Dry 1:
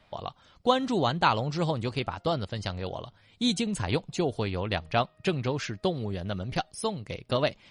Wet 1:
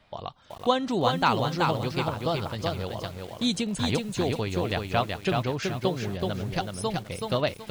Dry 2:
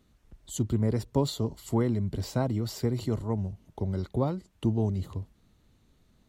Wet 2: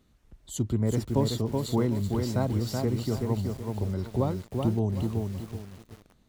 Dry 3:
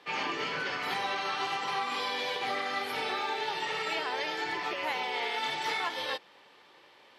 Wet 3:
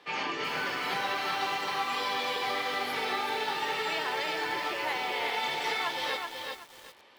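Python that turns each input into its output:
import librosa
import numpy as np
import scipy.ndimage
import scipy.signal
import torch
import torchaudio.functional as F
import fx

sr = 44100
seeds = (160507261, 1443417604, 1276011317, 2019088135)

y = fx.echo_crushed(x, sr, ms=377, feedback_pct=35, bits=8, wet_db=-3.5)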